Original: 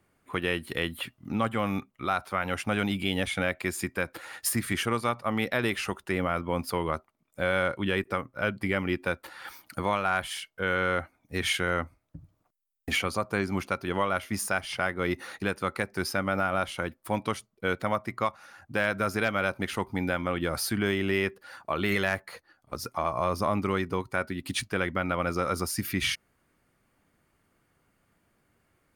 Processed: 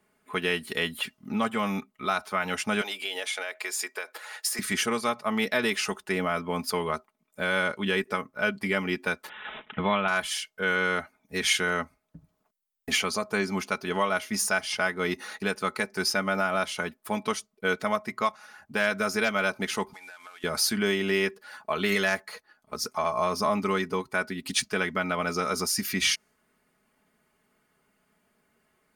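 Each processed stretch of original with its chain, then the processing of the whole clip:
2.81–4.59 s: high-pass 420 Hz 24 dB/octave + compression 4:1, threshold -30 dBFS
9.29–10.08 s: tone controls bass +7 dB, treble +8 dB + careless resampling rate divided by 6×, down none, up filtered
19.93–20.44 s: CVSD coder 64 kbps + high-pass 1.1 kHz + compression 8:1, threshold -44 dBFS
whole clip: bass shelf 110 Hz -11.5 dB; comb 4.7 ms, depth 66%; dynamic bell 5.9 kHz, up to +8 dB, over -51 dBFS, Q 1.2

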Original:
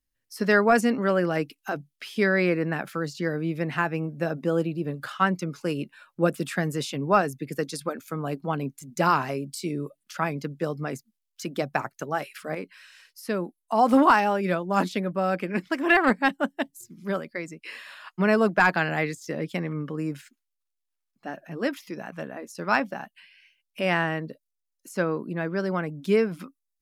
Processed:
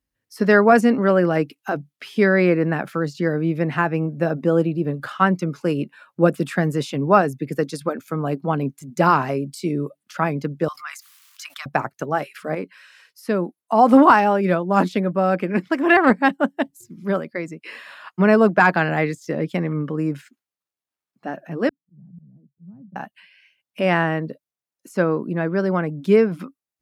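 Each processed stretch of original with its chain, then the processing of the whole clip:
10.68–11.66 s: elliptic high-pass 1.1 kHz, stop band 60 dB + level flattener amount 70%
21.69–22.96 s: Butterworth band-pass 150 Hz, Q 2.9 + slow attack 179 ms
whole clip: high-pass 59 Hz; treble shelf 2.2 kHz -9 dB; trim +7 dB

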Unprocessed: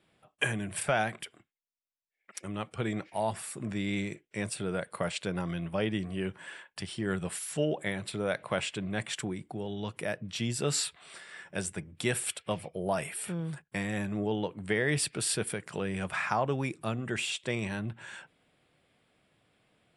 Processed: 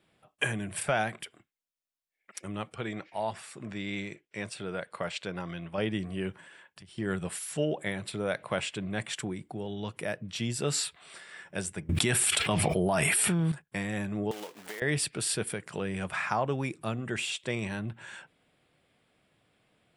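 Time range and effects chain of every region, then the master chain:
2.75–5.78 s: low-pass 6.3 kHz + bass shelf 390 Hz -6 dB
6.40–6.98 s: high-pass 81 Hz + bass shelf 200 Hz +10 dB + compression, threshold -49 dBFS
11.89–13.52 s: peaking EQ 520 Hz -10 dB 0.24 oct + level flattener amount 100%
14.31–14.82 s: block-companded coder 3-bit + high-pass 390 Hz + compression 12:1, threshold -35 dBFS
whole clip: none

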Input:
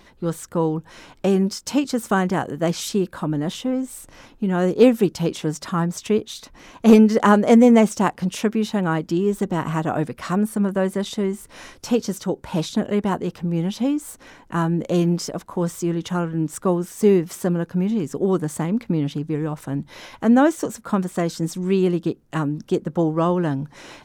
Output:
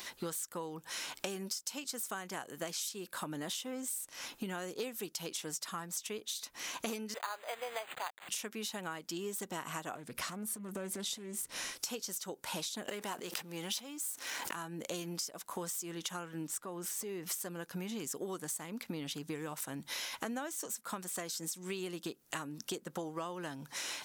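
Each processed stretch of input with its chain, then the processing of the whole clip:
7.14–8.29 s: send-on-delta sampling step -30.5 dBFS + high-pass 590 Hz 24 dB/octave + decimation joined by straight lines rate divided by 8×
9.95–11.72 s: bass shelf 330 Hz +11.5 dB + compression 4:1, threshold -27 dBFS + loudspeaker Doppler distortion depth 0.18 ms
12.87–14.56 s: high-pass 270 Hz 6 dB/octave + waveshaping leveller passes 1 + swell ahead of each attack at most 38 dB/s
16.47–17.32 s: treble shelf 4 kHz -8 dB + compression 3:1, threshold -27 dBFS
whole clip: tilt EQ +4.5 dB/octave; compression 16:1, threshold -38 dBFS; trim +1.5 dB

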